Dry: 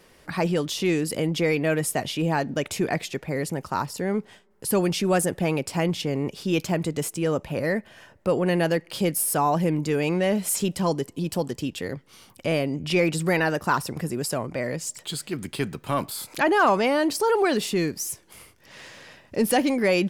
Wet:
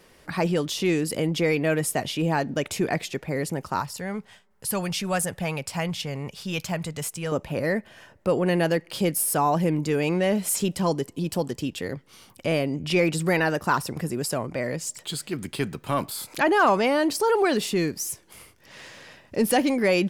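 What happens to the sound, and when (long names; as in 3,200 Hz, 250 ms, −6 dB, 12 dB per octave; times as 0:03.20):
0:03.80–0:07.32: parametric band 330 Hz −13 dB 1.1 octaves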